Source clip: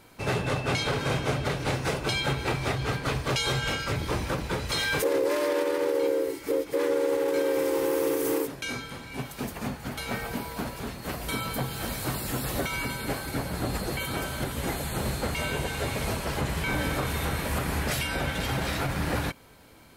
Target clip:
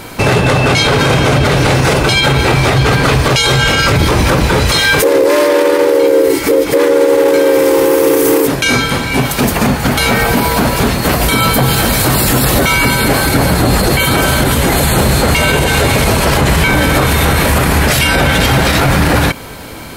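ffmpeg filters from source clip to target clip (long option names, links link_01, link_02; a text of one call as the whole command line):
ffmpeg -i in.wav -af "alimiter=level_in=26dB:limit=-1dB:release=50:level=0:latency=1,volume=-1dB" out.wav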